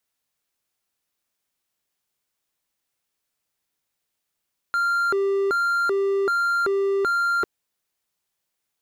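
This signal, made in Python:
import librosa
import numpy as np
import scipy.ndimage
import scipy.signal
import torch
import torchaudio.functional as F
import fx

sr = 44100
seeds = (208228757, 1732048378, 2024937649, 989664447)

y = fx.siren(sr, length_s=2.7, kind='hi-lo', low_hz=394.0, high_hz=1390.0, per_s=1.3, wave='triangle', level_db=-17.0)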